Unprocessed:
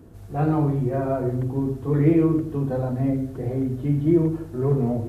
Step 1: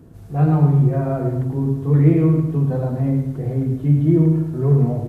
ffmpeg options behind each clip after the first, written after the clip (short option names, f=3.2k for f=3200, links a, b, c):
-af "equalizer=f=150:w=2.9:g=9,aecho=1:1:107|214|321|428|535:0.422|0.173|0.0709|0.0291|0.0119"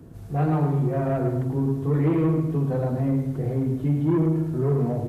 -filter_complex "[0:a]acrossover=split=230[a][b];[a]acompressor=threshold=-25dB:ratio=6[c];[b]asoftclip=type=tanh:threshold=-19dB[d];[c][d]amix=inputs=2:normalize=0"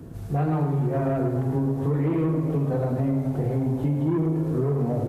-filter_complex "[0:a]asplit=6[a][b][c][d][e][f];[b]adelay=427,afreqshift=130,volume=-16dB[g];[c]adelay=854,afreqshift=260,volume=-20.9dB[h];[d]adelay=1281,afreqshift=390,volume=-25.8dB[i];[e]adelay=1708,afreqshift=520,volume=-30.6dB[j];[f]adelay=2135,afreqshift=650,volume=-35.5dB[k];[a][g][h][i][j][k]amix=inputs=6:normalize=0,acompressor=threshold=-26dB:ratio=4,volume=4.5dB"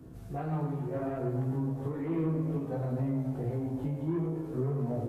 -af "flanger=delay=15.5:depth=3.2:speed=0.64,volume=-5.5dB"